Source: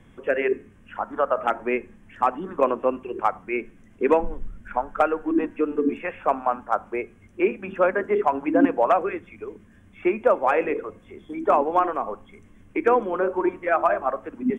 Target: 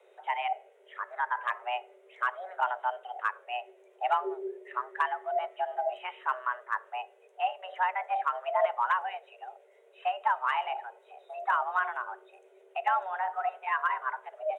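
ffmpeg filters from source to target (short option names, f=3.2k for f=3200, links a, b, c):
-af "afreqshift=370,volume=-8.5dB"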